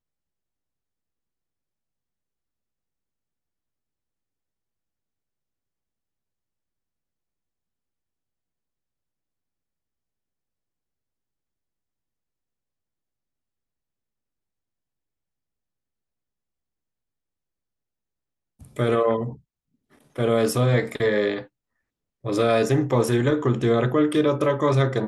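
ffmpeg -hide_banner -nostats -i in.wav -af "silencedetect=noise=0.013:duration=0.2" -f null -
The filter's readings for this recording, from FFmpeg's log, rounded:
silence_start: 0.00
silence_end: 18.61 | silence_duration: 18.61
silence_start: 19.35
silence_end: 20.16 | silence_duration: 0.81
silence_start: 21.44
silence_end: 22.25 | silence_duration: 0.81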